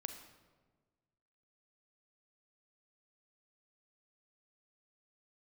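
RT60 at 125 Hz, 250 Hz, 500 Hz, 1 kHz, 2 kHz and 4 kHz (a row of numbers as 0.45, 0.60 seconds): 1.8, 1.7, 1.5, 1.3, 1.0, 0.85 seconds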